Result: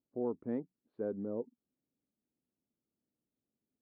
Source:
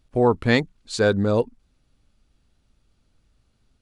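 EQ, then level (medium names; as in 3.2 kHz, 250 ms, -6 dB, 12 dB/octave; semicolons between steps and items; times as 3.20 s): ladder band-pass 340 Hz, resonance 25%; distance through air 380 m; -4.5 dB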